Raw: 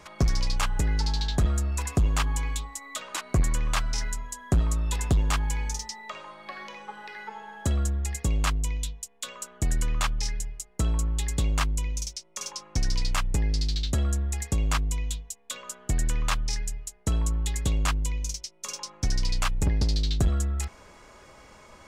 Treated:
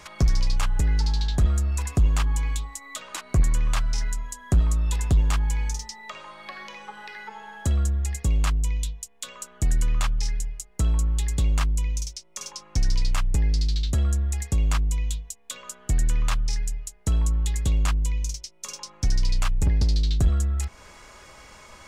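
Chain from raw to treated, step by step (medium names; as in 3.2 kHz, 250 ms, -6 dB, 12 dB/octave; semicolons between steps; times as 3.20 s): bass shelf 140 Hz +8 dB; tape noise reduction on one side only encoder only; trim -3 dB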